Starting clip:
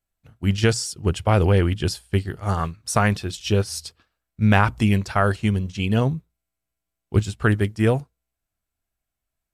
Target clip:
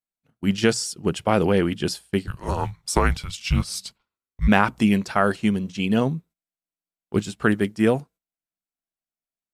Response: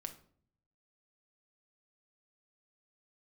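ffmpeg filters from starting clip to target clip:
-filter_complex "[0:a]agate=range=-13dB:threshold=-45dB:ratio=16:detection=peak,lowshelf=frequency=130:width_type=q:width=1.5:gain=-11.5,asplit=3[link_01][link_02][link_03];[link_01]afade=type=out:start_time=2.26:duration=0.02[link_04];[link_02]afreqshift=-270,afade=type=in:start_time=2.26:duration=0.02,afade=type=out:start_time=4.47:duration=0.02[link_05];[link_03]afade=type=in:start_time=4.47:duration=0.02[link_06];[link_04][link_05][link_06]amix=inputs=3:normalize=0"

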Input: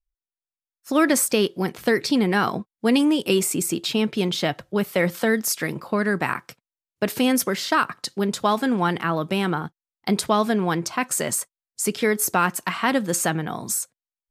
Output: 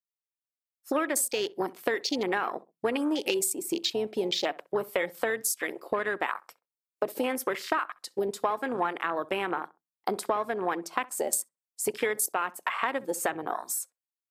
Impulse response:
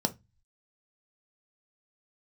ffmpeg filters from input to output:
-filter_complex "[0:a]highpass=450,afwtdn=0.0355,highshelf=frequency=9000:gain=11,acompressor=threshold=-31dB:ratio=6,asplit=2[link_01][link_02];[link_02]adelay=65,lowpass=frequency=1200:poles=1,volume=-19dB,asplit=2[link_03][link_04];[link_04]adelay=65,lowpass=frequency=1200:poles=1,volume=0.29[link_05];[link_01][link_03][link_05]amix=inputs=3:normalize=0,asplit=2[link_06][link_07];[1:a]atrim=start_sample=2205,asetrate=61740,aresample=44100[link_08];[link_07][link_08]afir=irnorm=-1:irlink=0,volume=-22.5dB[link_09];[link_06][link_09]amix=inputs=2:normalize=0,volume=4.5dB"

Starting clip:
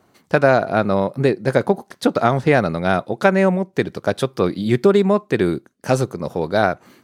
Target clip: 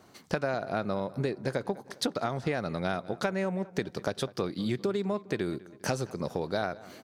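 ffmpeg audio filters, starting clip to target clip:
ffmpeg -i in.wav -filter_complex "[0:a]equalizer=frequency=5100:width_type=o:width=1.3:gain=5.5,acompressor=threshold=-29dB:ratio=5,asplit=2[link_01][link_02];[link_02]adelay=202,lowpass=frequency=3000:poles=1,volume=-19dB,asplit=2[link_03][link_04];[link_04]adelay=202,lowpass=frequency=3000:poles=1,volume=0.51,asplit=2[link_05][link_06];[link_06]adelay=202,lowpass=frequency=3000:poles=1,volume=0.51,asplit=2[link_07][link_08];[link_08]adelay=202,lowpass=frequency=3000:poles=1,volume=0.51[link_09];[link_01][link_03][link_05][link_07][link_09]amix=inputs=5:normalize=0" out.wav

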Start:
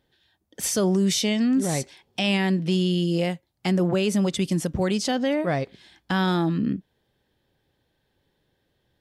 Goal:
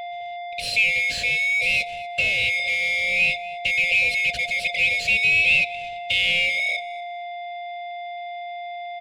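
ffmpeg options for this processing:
ffmpeg -i in.wav -filter_complex "[0:a]afftfilt=real='real(if(lt(b,920),b+92*(1-2*mod(floor(b/92),2)),b),0)':imag='imag(if(lt(b,920),b+92*(1-2*mod(floor(b/92),2)),b),0)':win_size=2048:overlap=0.75,aeval=exprs='val(0)+0.0447*sin(2*PI*700*n/s)':channel_layout=same,asplit=2[link_01][link_02];[link_02]highpass=frequency=720:poles=1,volume=26dB,asoftclip=type=tanh:threshold=-10dB[link_03];[link_01][link_03]amix=inputs=2:normalize=0,lowpass=frequency=2600:poles=1,volume=-6dB,acrossover=split=160|3000[link_04][link_05][link_06];[link_05]acompressor=threshold=-45dB:ratio=1.5[link_07];[link_04][link_07][link_06]amix=inputs=3:normalize=0,firequalizer=gain_entry='entry(130,0);entry(200,1);entry(350,-12);entry(510,9);entry(970,-27);entry(2600,10);entry(3800,2);entry(6300,-12);entry(9000,-8);entry(13000,-16)':delay=0.05:min_phase=1,aecho=1:1:239|478:0.1|0.021" out.wav

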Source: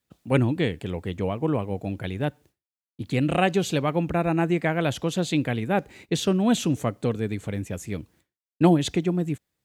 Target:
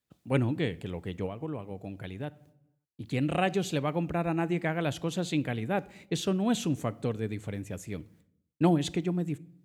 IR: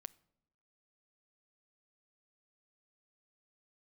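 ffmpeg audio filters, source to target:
-filter_complex "[1:a]atrim=start_sample=2205[link_01];[0:a][link_01]afir=irnorm=-1:irlink=0,asettb=1/sr,asplit=3[link_02][link_03][link_04];[link_02]atrim=end=1.264[link_05];[link_03]atrim=start=1.26:end=3.03,asetpts=PTS-STARTPTS,afade=type=in:duration=0.004:curve=qsin,afade=type=out:start_time=1.766:duration=0.004:curve=qsin,acompressor=threshold=-37dB:ratio=2[link_06];[link_04]atrim=start=3.026[link_07];[link_05][link_06]acrossfade=duration=0.004:curve1=hsin:curve2=qsin[link_08];[link_08][link_07]acrossfade=duration=0.004:curve1=qsin:curve2=hsin"

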